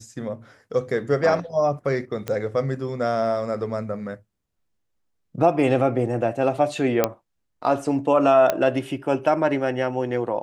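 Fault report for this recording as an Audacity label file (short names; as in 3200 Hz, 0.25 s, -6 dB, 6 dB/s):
2.280000	2.280000	pop -13 dBFS
7.040000	7.040000	pop -4 dBFS
8.500000	8.500000	pop -7 dBFS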